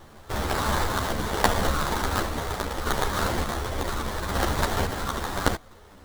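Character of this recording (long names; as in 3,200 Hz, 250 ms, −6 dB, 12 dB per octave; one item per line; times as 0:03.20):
phaser sweep stages 8, 0.91 Hz, lowest notch 460–2,100 Hz
aliases and images of a low sample rate 2,600 Hz, jitter 20%
sample-and-hold tremolo 3.5 Hz
a shimmering, thickened sound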